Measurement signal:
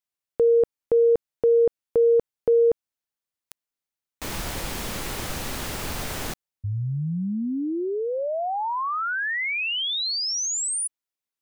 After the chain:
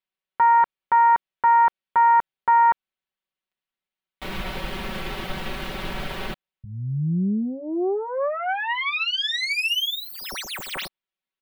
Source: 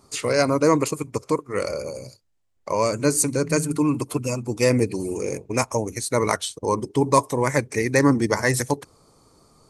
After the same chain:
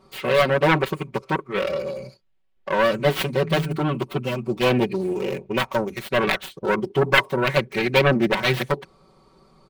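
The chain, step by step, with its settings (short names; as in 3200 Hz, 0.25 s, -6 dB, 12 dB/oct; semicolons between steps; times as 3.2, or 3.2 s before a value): self-modulated delay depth 0.62 ms; resonant high shelf 4700 Hz -12.5 dB, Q 1.5; comb 5.3 ms, depth 99%; gain -1 dB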